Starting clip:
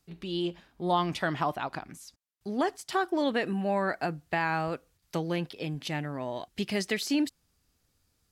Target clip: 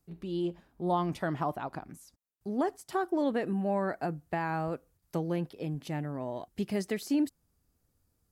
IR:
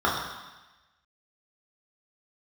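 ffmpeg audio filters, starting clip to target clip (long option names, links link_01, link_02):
-af "equalizer=frequency=3400:width_type=o:width=2.6:gain=-12"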